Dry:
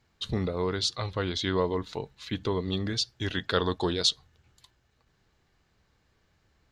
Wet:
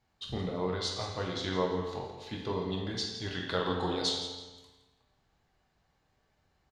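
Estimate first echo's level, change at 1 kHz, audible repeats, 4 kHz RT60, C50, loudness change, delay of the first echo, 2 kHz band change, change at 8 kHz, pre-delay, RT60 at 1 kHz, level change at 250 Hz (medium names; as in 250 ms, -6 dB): -11.5 dB, -1.5 dB, 1, 1.1 s, 2.0 dB, -4.5 dB, 167 ms, -4.5 dB, -5.5 dB, 12 ms, 1.2 s, -4.0 dB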